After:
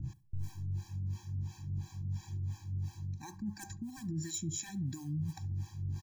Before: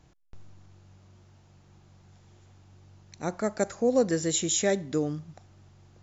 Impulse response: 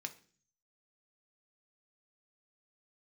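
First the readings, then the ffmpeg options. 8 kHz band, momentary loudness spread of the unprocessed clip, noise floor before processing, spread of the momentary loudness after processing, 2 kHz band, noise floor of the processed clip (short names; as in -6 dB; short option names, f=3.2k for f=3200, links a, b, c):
n/a, 11 LU, -59 dBFS, 6 LU, -15.5 dB, -57 dBFS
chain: -filter_complex "[0:a]bandreject=f=3k:w=14,acrusher=bits=7:mode=log:mix=0:aa=0.000001,acrossover=split=430[a][b];[a]aeval=exprs='val(0)*(1-1/2+1/2*cos(2*PI*2.9*n/s))':c=same[c];[b]aeval=exprs='val(0)*(1-1/2-1/2*cos(2*PI*2.9*n/s))':c=same[d];[c][d]amix=inputs=2:normalize=0,aeval=exprs='0.0841*(abs(mod(val(0)/0.0841+3,4)-2)-1)':c=same,equalizer=f=110:w=1.2:g=13.5,alimiter=level_in=3.5dB:limit=-24dB:level=0:latency=1:release=94,volume=-3.5dB,areverse,acompressor=threshold=-50dB:ratio=10,areverse,bass=f=250:g=6,treble=f=4k:g=8,asplit=2[e][f];[f]adelay=68,lowpass=f=1.8k:p=1,volume=-20dB,asplit=2[g][h];[h]adelay=68,lowpass=f=1.8k:p=1,volume=0.34,asplit=2[i][j];[j]adelay=68,lowpass=f=1.8k:p=1,volume=0.34[k];[g][i][k]amix=inputs=3:normalize=0[l];[e][l]amix=inputs=2:normalize=0,afftfilt=real='re*eq(mod(floor(b*sr/1024/380),2),0)':imag='im*eq(mod(floor(b*sr/1024/380),2),0)':win_size=1024:overlap=0.75,volume=11dB"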